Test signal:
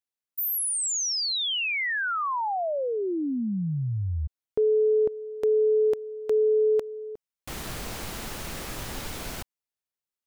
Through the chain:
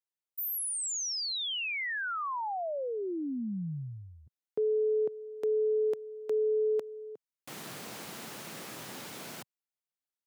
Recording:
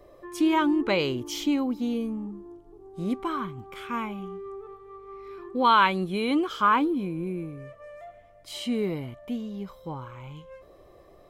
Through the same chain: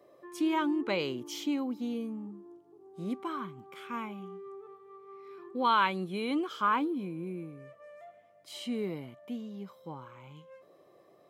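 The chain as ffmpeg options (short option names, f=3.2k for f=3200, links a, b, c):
-af "highpass=f=140:w=0.5412,highpass=f=140:w=1.3066,volume=-6.5dB"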